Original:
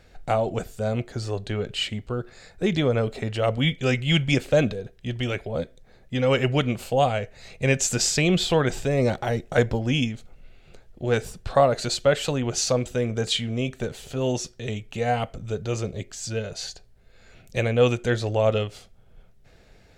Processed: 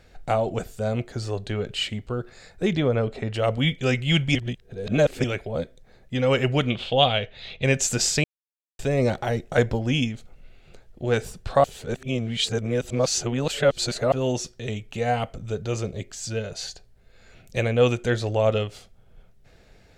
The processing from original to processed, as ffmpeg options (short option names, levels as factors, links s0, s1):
-filter_complex "[0:a]asettb=1/sr,asplit=3[s0][s1][s2];[s0]atrim=end=2.734[s3];[s1]atrim=start=2.73:end=3.34,asetpts=PTS-STARTPTS,afade=t=in:d=0.004:c=qsin,afade=t=out:st=0.606:d=0.004:c=qsin,aemphasis=mode=reproduction:type=50kf[s4];[s2]atrim=start=3.336[s5];[s3][s4]acrossfade=d=0.004:c1=hsin:c2=qsin[s6];[s6][s5]acrossfade=d=0.004:c1=qsin:c2=hsin,asettb=1/sr,asplit=3[s7][s8][s9];[s7]atrim=end=6.704[s10];[s8]atrim=start=6.7:end=7.64,asetpts=PTS-STARTPTS,afade=t=in:d=0.004:c=qsin,afade=t=out:st=0.936:d=0.004:c=qsin,lowpass=f=3400:t=q:w=7.8[s11];[s9]atrim=start=7.636[s12];[s10][s11]acrossfade=d=0.004:c1=hsin:c2=qsin[s13];[s13][s12]acrossfade=d=0.004:c1=qsin:c2=hsin,asplit=7[s14][s15][s16][s17][s18][s19][s20];[s14]atrim=end=4.352[s21];[s15]atrim=start=4.348:end=5.242,asetpts=PTS-STARTPTS,areverse[s22];[s16]atrim=start=5.238:end=8.24,asetpts=PTS-STARTPTS,afade=t=out:st=2.998:d=0.004:c=hsin[s23];[s17]atrim=start=8.24:end=8.79,asetpts=PTS-STARTPTS,volume=0[s24];[s18]atrim=start=8.79:end=11.642,asetpts=PTS-STARTPTS,afade=t=in:d=0.004:c=hsin[s25];[s19]atrim=start=11.638:end=14.122,asetpts=PTS-STARTPTS,areverse[s26];[s20]atrim=start=14.118[s27];[s21][s22]acrossfade=d=0.004:c1=hsin:c2=hsin[s28];[s23][s24][s25]concat=n=3:v=0:a=1[s29];[s28][s29]acrossfade=d=0.004:c1=hsin:c2=hsin[s30];[s30][s26]acrossfade=d=0.004:c1=hsin:c2=hsin[s31];[s31][s27]acrossfade=d=0.004:c1=hsin:c2=hsin"